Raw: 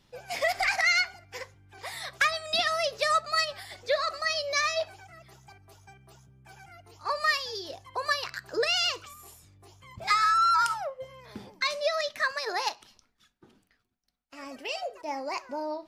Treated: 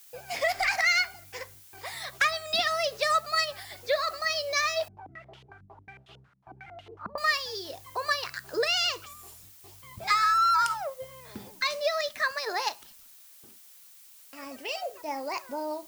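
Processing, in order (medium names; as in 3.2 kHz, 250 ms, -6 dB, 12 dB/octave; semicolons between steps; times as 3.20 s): gate with hold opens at -44 dBFS; added noise blue -53 dBFS; 4.88–7.18 s: step-sequenced low-pass 11 Hz 200–3100 Hz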